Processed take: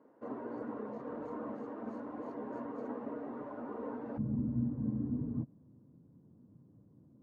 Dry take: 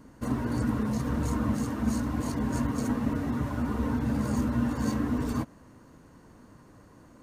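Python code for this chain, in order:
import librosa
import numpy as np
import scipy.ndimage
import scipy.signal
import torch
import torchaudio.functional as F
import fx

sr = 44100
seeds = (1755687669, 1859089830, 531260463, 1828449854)

y = fx.ladder_bandpass(x, sr, hz=fx.steps((0.0, 580.0), (4.17, 170.0)), resonance_pct=30)
y = y * 10.0 ** (5.5 / 20.0)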